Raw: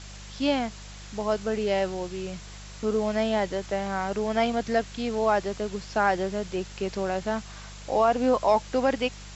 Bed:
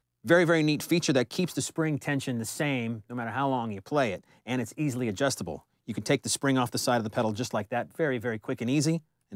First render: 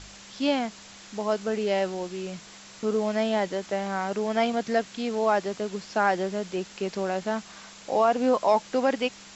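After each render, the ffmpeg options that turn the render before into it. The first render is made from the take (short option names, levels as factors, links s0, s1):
-af "bandreject=f=50:t=h:w=4,bandreject=f=100:t=h:w=4,bandreject=f=150:t=h:w=4"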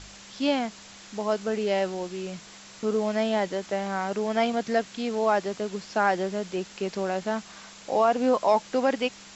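-af anull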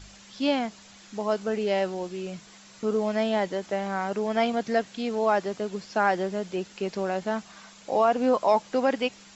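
-af "afftdn=nr=6:nf=-47"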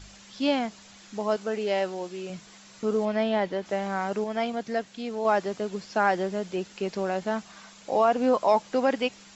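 -filter_complex "[0:a]asettb=1/sr,asplit=3[s0][s1][s2];[s0]atrim=end=1.364[s3];[s1]atrim=start=1.36:end=2.3,asetpts=PTS-STARTPTS,afade=t=in:d=0.004:c=qsin,afade=t=out:st=0.936:d=0.004:c=qsin,lowshelf=f=150:g=-11.5[s4];[s2]atrim=start=2.296[s5];[s3][s4]acrossfade=d=0.004:c1=hsin:c2=qsin[s6];[s6][s5]acrossfade=d=0.004:c1=qsin:c2=hsin,asettb=1/sr,asplit=3[s7][s8][s9];[s7]atrim=end=3.054[s10];[s8]atrim=start=3.05:end=3.66,asetpts=PTS-STARTPTS,afade=t=in:d=0.004:c=qsin,afade=t=out:st=0.606:d=0.004:c=qsin,lowpass=4300[s11];[s9]atrim=start=3.656[s12];[s10][s11]acrossfade=d=0.004:c1=hsin:c2=qsin[s13];[s13][s12]acrossfade=d=0.004:c1=qsin:c2=hsin,asplit=3[s14][s15][s16];[s14]atrim=end=4.242[s17];[s15]atrim=start=4.238:end=5.252,asetpts=PTS-STARTPTS,volume=0.631[s18];[s16]atrim=start=5.248[s19];[s17][s18]acrossfade=d=0.004:c1=hsin:c2=hsin[s20];[s20][s19]acrossfade=d=0.004:c1=hsin:c2=hsin"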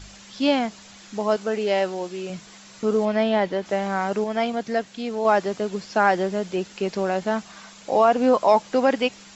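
-af "volume=1.68"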